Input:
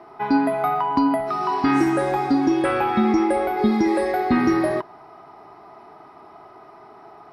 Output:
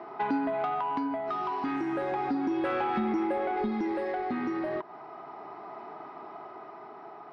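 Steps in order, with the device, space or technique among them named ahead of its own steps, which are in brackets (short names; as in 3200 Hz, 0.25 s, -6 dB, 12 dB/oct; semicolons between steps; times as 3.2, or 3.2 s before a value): AM radio (BPF 170–3400 Hz; compressor 5:1, threshold -27 dBFS, peak gain reduction 11.5 dB; soft clip -23 dBFS, distortion -19 dB; tremolo 0.34 Hz, depth 31%); gain +2 dB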